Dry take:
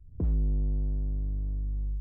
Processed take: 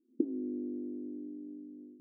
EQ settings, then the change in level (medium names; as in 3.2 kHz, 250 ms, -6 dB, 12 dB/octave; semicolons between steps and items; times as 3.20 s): brick-wall FIR high-pass 220 Hz; resonant low-pass 330 Hz, resonance Q 4; tilt EQ -3 dB/octave; -5.5 dB